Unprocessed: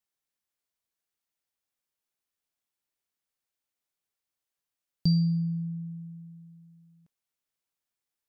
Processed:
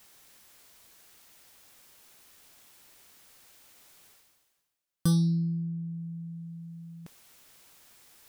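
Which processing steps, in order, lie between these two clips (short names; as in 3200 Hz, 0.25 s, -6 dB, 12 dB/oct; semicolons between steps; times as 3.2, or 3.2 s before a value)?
self-modulated delay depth 0.37 ms; reverse; upward compressor, threshold -33 dBFS; reverse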